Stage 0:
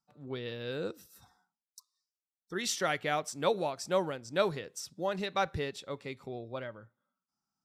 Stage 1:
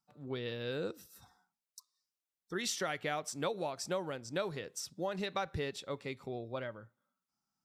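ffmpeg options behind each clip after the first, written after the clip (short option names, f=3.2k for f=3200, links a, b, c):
-af "acompressor=threshold=-32dB:ratio=6"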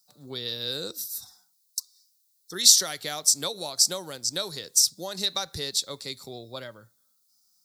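-filter_complex "[0:a]acrossover=split=190[a][b];[b]crystalizer=i=4.5:c=0[c];[a][c]amix=inputs=2:normalize=0,highshelf=f=3.4k:t=q:w=3:g=7"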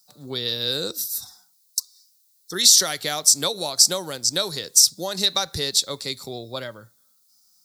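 -af "alimiter=level_in=7.5dB:limit=-1dB:release=50:level=0:latency=1,volume=-1dB"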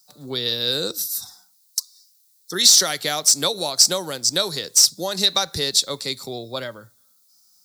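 -filter_complex "[0:a]acrossover=split=120|6500[a][b][c];[a]flanger=delay=7.3:depth=7.8:regen=-82:speed=0.5:shape=sinusoidal[d];[c]asoftclip=type=tanh:threshold=-19.5dB[e];[d][b][e]amix=inputs=3:normalize=0,volume=2.5dB"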